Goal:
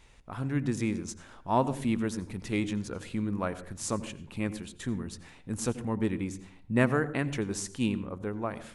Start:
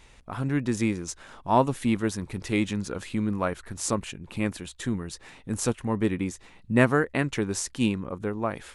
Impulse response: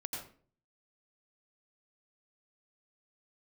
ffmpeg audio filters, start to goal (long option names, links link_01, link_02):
-filter_complex "[0:a]asplit=2[link_01][link_02];[1:a]atrim=start_sample=2205,lowshelf=frequency=410:gain=9[link_03];[link_02][link_03]afir=irnorm=-1:irlink=0,volume=-13.5dB[link_04];[link_01][link_04]amix=inputs=2:normalize=0,volume=-6.5dB"